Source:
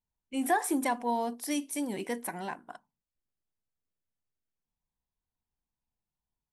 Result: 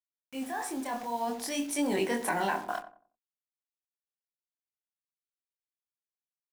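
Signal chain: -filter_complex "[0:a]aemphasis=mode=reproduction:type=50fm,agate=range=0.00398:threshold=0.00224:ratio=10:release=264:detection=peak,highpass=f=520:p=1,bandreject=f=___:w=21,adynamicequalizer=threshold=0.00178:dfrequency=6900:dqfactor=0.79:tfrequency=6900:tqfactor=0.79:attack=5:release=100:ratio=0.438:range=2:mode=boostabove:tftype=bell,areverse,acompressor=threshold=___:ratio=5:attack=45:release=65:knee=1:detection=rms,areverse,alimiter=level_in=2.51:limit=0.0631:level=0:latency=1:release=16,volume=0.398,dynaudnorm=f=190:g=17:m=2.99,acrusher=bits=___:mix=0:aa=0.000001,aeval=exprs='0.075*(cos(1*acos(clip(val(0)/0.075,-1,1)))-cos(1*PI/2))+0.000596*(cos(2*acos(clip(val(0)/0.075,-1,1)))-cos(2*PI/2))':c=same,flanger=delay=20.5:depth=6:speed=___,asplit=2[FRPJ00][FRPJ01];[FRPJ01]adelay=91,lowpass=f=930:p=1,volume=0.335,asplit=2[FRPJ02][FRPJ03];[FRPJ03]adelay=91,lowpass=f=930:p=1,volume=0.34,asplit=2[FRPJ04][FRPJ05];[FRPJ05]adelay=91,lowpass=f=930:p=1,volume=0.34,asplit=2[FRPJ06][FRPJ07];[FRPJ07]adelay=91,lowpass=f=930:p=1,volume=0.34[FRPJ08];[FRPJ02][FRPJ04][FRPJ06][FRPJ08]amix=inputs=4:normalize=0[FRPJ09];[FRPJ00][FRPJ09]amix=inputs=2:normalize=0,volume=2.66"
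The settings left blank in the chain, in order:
2100, 0.00708, 8, 0.54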